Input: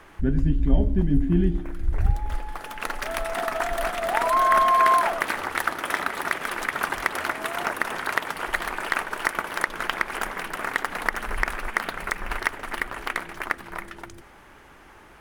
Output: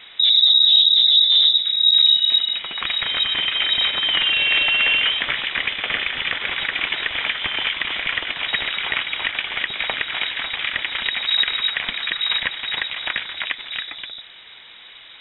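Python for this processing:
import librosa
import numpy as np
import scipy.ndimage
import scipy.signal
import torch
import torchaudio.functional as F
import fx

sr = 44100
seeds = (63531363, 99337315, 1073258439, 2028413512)

p1 = fx.peak_eq(x, sr, hz=1100.0, db=-9.0, octaves=0.33)
p2 = fx.fold_sine(p1, sr, drive_db=11, ceiling_db=-6.0)
p3 = p1 + (p2 * librosa.db_to_amplitude(-9.5))
p4 = fx.freq_invert(p3, sr, carrier_hz=3800)
y = p4 * librosa.db_to_amplitude(-2.0)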